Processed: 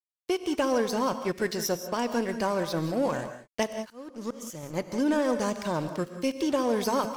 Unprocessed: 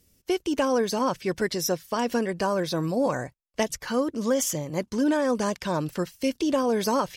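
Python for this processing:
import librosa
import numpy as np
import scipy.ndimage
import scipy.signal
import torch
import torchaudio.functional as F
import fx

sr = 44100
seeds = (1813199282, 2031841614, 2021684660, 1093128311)

y = np.sign(x) * np.maximum(np.abs(x) - 10.0 ** (-40.0 / 20.0), 0.0)
y = fx.auto_swell(y, sr, attack_ms=598.0, at=(3.68, 4.63))
y = fx.rev_gated(y, sr, seeds[0], gate_ms=210, shape='rising', drr_db=9.0)
y = y * librosa.db_to_amplitude(-1.5)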